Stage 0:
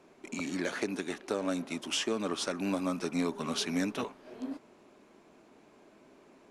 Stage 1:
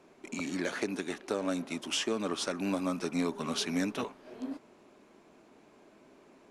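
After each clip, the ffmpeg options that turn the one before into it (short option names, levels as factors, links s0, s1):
-af anull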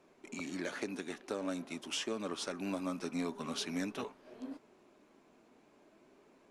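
-af "flanger=delay=1.6:depth=2.7:regen=85:speed=0.46:shape=triangular,volume=0.891"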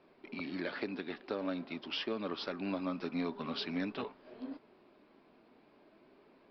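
-af "aresample=11025,aresample=44100,volume=1.12"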